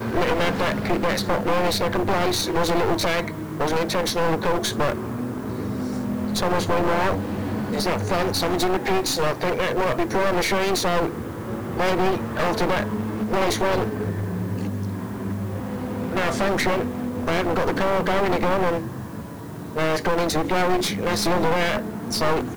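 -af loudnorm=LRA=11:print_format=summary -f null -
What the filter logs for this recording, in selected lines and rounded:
Input Integrated:    -23.3 LUFS
Input True Peak:     -10.1 dBTP
Input LRA:             2.5 LU
Input Threshold:     -33.4 LUFS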